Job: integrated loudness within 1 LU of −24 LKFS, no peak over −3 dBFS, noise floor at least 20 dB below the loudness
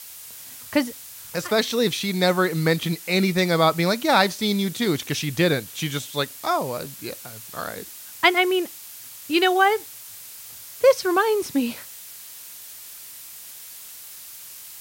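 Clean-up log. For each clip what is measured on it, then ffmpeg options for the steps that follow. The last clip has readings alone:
background noise floor −41 dBFS; target noise floor −42 dBFS; integrated loudness −22.0 LKFS; sample peak −2.0 dBFS; target loudness −24.0 LKFS
→ -af "afftdn=noise_reduction=6:noise_floor=-41"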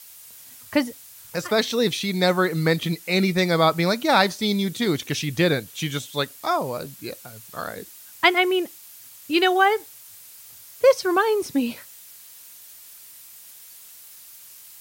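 background noise floor −46 dBFS; integrated loudness −22.0 LKFS; sample peak −2.0 dBFS; target loudness −24.0 LKFS
→ -af "volume=-2dB"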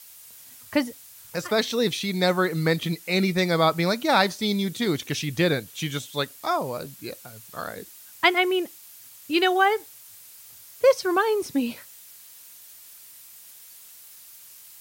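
integrated loudness −24.0 LKFS; sample peak −4.0 dBFS; background noise floor −48 dBFS

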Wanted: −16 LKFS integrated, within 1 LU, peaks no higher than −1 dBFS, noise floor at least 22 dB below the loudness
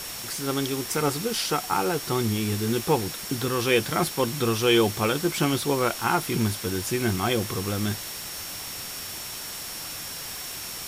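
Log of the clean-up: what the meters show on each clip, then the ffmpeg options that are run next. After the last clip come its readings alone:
interfering tone 5,500 Hz; level of the tone −41 dBFS; background noise floor −36 dBFS; target noise floor −48 dBFS; integrated loudness −26.0 LKFS; sample peak −8.5 dBFS; target loudness −16.0 LKFS
→ -af "bandreject=frequency=5500:width=30"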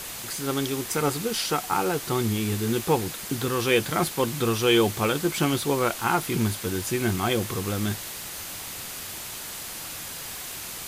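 interfering tone none found; background noise floor −37 dBFS; target noise floor −48 dBFS
→ -af "afftdn=noise_reduction=11:noise_floor=-37"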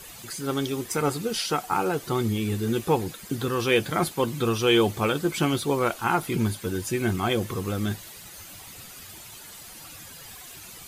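background noise floor −44 dBFS; target noise floor −48 dBFS
→ -af "afftdn=noise_reduction=6:noise_floor=-44"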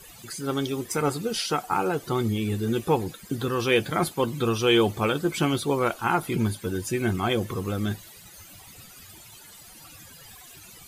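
background noise floor −48 dBFS; integrated loudness −26.0 LKFS; sample peak −9.0 dBFS; target loudness −16.0 LKFS
→ -af "volume=10dB,alimiter=limit=-1dB:level=0:latency=1"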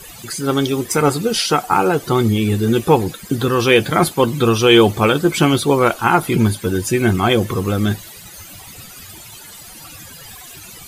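integrated loudness −16.0 LKFS; sample peak −1.0 dBFS; background noise floor −38 dBFS

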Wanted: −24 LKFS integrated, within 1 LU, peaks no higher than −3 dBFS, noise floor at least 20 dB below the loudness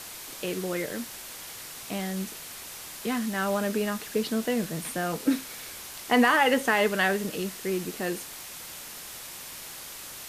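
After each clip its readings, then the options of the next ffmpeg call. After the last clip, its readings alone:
background noise floor −42 dBFS; target noise floor −49 dBFS; integrated loudness −29.0 LKFS; sample peak −9.5 dBFS; target loudness −24.0 LKFS
→ -af "afftdn=noise_reduction=7:noise_floor=-42"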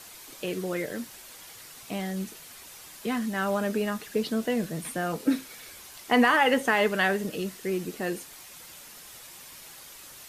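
background noise floor −47 dBFS; target noise floor −48 dBFS
→ -af "afftdn=noise_reduction=6:noise_floor=-47"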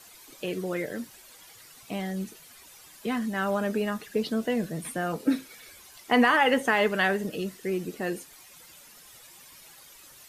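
background noise floor −52 dBFS; integrated loudness −28.0 LKFS; sample peak −10.0 dBFS; target loudness −24.0 LKFS
→ -af "volume=4dB"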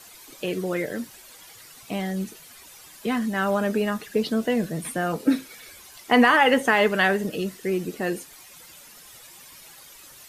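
integrated loudness −24.0 LKFS; sample peak −6.0 dBFS; background noise floor −48 dBFS

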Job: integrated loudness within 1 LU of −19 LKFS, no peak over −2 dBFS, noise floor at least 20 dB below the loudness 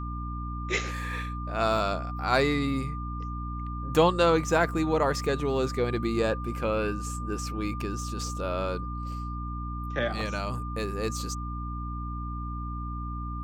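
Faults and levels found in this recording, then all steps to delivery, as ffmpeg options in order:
mains hum 60 Hz; hum harmonics up to 300 Hz; level of the hum −32 dBFS; interfering tone 1,200 Hz; level of the tone −38 dBFS; integrated loudness −29.5 LKFS; sample peak −9.5 dBFS; target loudness −19.0 LKFS
→ -af "bandreject=frequency=60:width_type=h:width=4,bandreject=frequency=120:width_type=h:width=4,bandreject=frequency=180:width_type=h:width=4,bandreject=frequency=240:width_type=h:width=4,bandreject=frequency=300:width_type=h:width=4"
-af "bandreject=frequency=1200:width=30"
-af "volume=10.5dB,alimiter=limit=-2dB:level=0:latency=1"

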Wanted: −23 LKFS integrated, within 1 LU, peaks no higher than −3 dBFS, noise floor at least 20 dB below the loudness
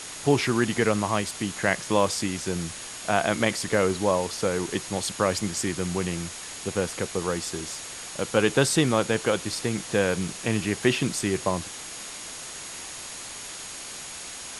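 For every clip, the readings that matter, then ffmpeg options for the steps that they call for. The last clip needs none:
interfering tone 6,700 Hz; level of the tone −44 dBFS; background noise floor −39 dBFS; target noise floor −47 dBFS; integrated loudness −26.5 LKFS; sample peak −6.0 dBFS; target loudness −23.0 LKFS
→ -af "bandreject=frequency=6700:width=30"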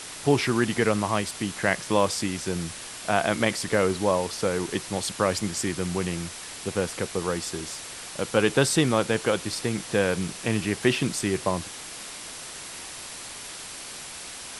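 interfering tone none found; background noise floor −39 dBFS; target noise floor −47 dBFS
→ -af "afftdn=noise_reduction=8:noise_floor=-39"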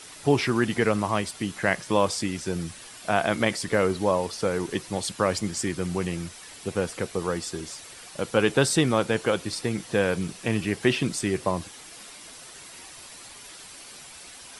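background noise floor −45 dBFS; target noise floor −46 dBFS
→ -af "afftdn=noise_reduction=6:noise_floor=-45"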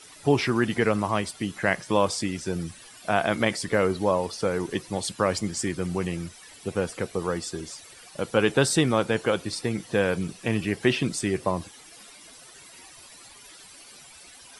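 background noise floor −49 dBFS; integrated loudness −26.0 LKFS; sample peak −6.5 dBFS; target loudness −23.0 LKFS
→ -af "volume=3dB"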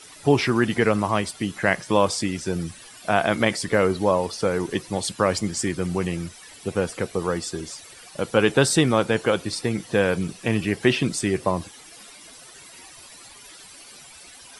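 integrated loudness −23.0 LKFS; sample peak −3.5 dBFS; background noise floor −46 dBFS

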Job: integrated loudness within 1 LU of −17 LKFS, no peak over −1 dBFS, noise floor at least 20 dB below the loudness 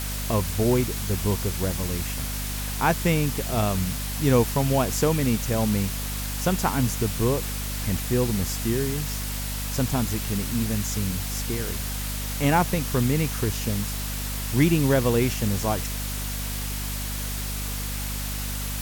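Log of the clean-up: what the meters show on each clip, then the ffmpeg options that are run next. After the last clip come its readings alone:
mains hum 50 Hz; hum harmonics up to 250 Hz; level of the hum −29 dBFS; background noise floor −30 dBFS; target noise floor −46 dBFS; integrated loudness −25.5 LKFS; sample peak −6.5 dBFS; target loudness −17.0 LKFS
→ -af "bandreject=frequency=50:width_type=h:width=6,bandreject=frequency=100:width_type=h:width=6,bandreject=frequency=150:width_type=h:width=6,bandreject=frequency=200:width_type=h:width=6,bandreject=frequency=250:width_type=h:width=6"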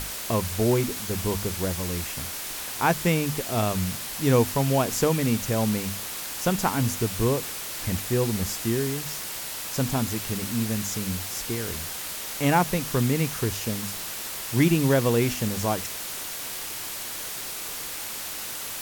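mains hum none found; background noise floor −34 dBFS; target noise floor −46 dBFS
→ -af "afftdn=noise_reduction=12:noise_floor=-34"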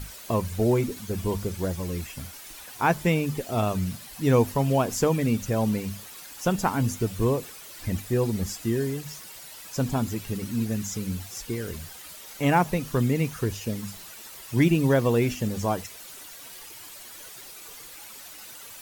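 background noise floor −44 dBFS; target noise floor −47 dBFS
→ -af "afftdn=noise_reduction=6:noise_floor=-44"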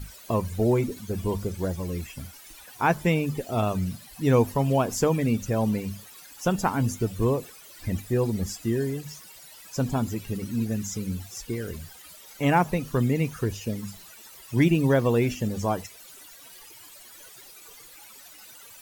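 background noise floor −48 dBFS; integrated loudness −26.5 LKFS; sample peak −8.0 dBFS; target loudness −17.0 LKFS
→ -af "volume=9.5dB,alimiter=limit=-1dB:level=0:latency=1"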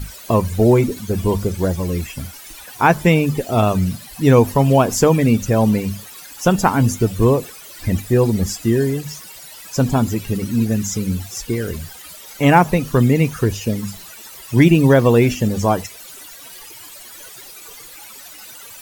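integrated loudness −17.0 LKFS; sample peak −1.0 dBFS; background noise floor −39 dBFS

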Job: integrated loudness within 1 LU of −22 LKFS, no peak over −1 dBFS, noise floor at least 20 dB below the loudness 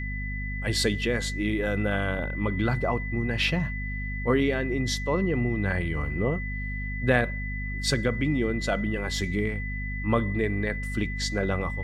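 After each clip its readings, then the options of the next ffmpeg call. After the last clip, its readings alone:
mains hum 50 Hz; hum harmonics up to 250 Hz; level of the hum −30 dBFS; interfering tone 2,000 Hz; level of the tone −35 dBFS; integrated loudness −27.5 LKFS; sample peak −7.5 dBFS; target loudness −22.0 LKFS
→ -af "bandreject=frequency=50:width_type=h:width=4,bandreject=frequency=100:width_type=h:width=4,bandreject=frequency=150:width_type=h:width=4,bandreject=frequency=200:width_type=h:width=4,bandreject=frequency=250:width_type=h:width=4"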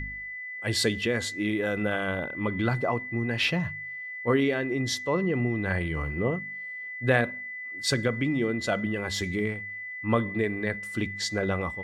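mains hum none found; interfering tone 2,000 Hz; level of the tone −35 dBFS
→ -af "bandreject=frequency=2000:width=30"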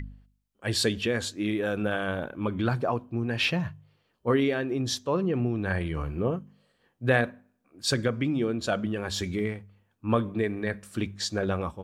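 interfering tone none found; integrated loudness −28.5 LKFS; sample peak −8.5 dBFS; target loudness −22.0 LKFS
→ -af "volume=6.5dB"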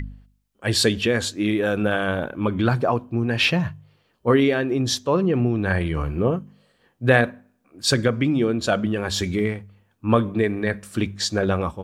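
integrated loudness −22.0 LKFS; sample peak −2.0 dBFS; background noise floor −66 dBFS

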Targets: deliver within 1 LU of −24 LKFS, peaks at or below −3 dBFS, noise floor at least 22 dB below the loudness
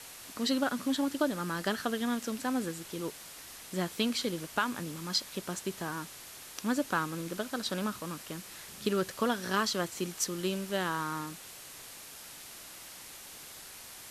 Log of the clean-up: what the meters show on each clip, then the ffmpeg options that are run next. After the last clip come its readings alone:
background noise floor −48 dBFS; target noise floor −56 dBFS; integrated loudness −33.5 LKFS; sample peak −15.0 dBFS; target loudness −24.0 LKFS
→ -af "afftdn=noise_reduction=8:noise_floor=-48"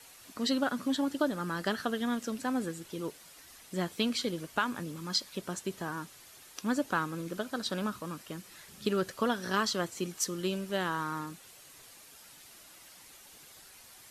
background noise floor −54 dBFS; target noise floor −56 dBFS
→ -af "afftdn=noise_reduction=6:noise_floor=-54"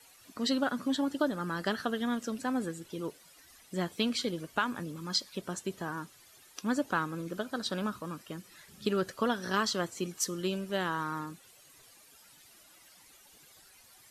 background noise floor −59 dBFS; integrated loudness −33.5 LKFS; sample peak −15.0 dBFS; target loudness −24.0 LKFS
→ -af "volume=9.5dB"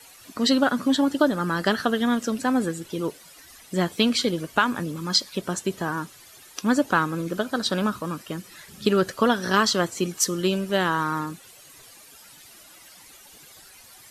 integrated loudness −24.0 LKFS; sample peak −5.5 dBFS; background noise floor −49 dBFS

